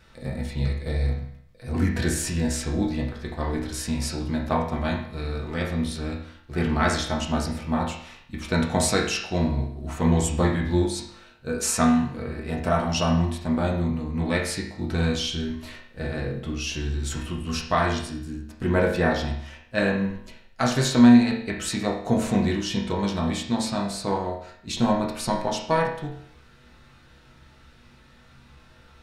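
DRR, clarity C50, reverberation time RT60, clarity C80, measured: -3.0 dB, 5.5 dB, 0.60 s, 8.5 dB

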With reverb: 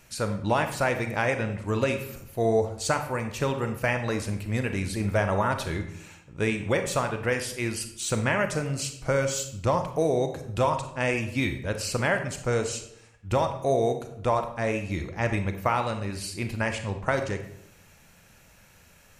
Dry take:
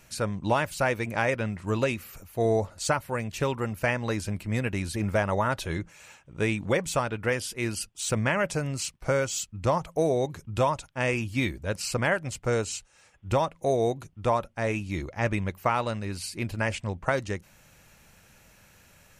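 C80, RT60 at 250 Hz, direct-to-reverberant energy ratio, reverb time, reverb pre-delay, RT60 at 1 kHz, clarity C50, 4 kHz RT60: 12.0 dB, 0.85 s, 6.5 dB, 0.75 s, 30 ms, 0.70 s, 8.5 dB, 0.50 s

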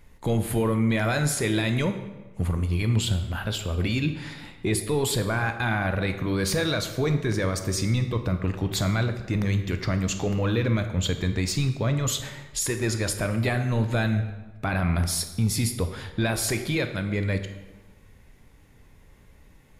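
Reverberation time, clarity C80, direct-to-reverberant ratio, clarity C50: 1.2 s, 11.0 dB, 7.0 dB, 9.0 dB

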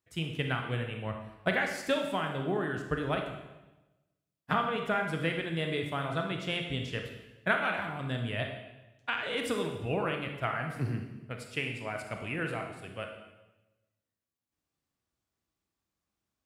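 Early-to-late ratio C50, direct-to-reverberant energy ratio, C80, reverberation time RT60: 5.0 dB, 3.0 dB, 7.5 dB, 1.1 s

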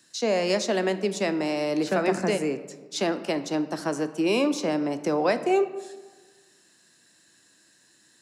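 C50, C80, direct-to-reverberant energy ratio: 12.5 dB, 14.5 dB, 10.5 dB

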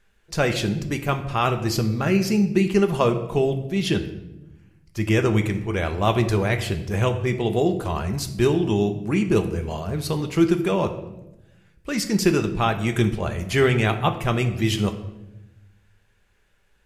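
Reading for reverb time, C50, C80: 0.95 s, 11.0 dB, 13.5 dB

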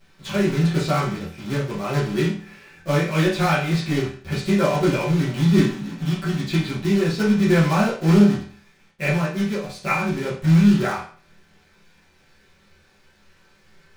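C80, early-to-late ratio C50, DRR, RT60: 10.5 dB, 5.5 dB, -10.0 dB, 0.45 s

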